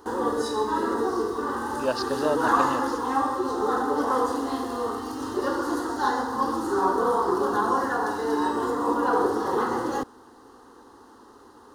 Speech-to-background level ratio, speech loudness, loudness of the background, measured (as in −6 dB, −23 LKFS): −5.0 dB, −30.5 LKFS, −25.5 LKFS